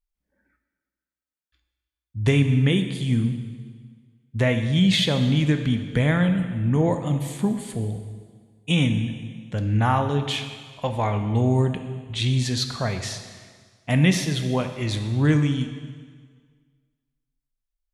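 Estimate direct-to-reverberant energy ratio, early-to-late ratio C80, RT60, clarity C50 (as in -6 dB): 6.5 dB, 9.5 dB, 1.7 s, 8.5 dB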